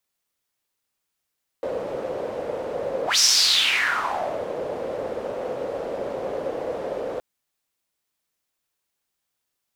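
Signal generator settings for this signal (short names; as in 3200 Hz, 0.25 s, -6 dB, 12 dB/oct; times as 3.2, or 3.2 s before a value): whoosh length 5.57 s, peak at 1.56, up 0.14 s, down 1.35 s, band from 520 Hz, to 5600 Hz, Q 5.2, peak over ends 12 dB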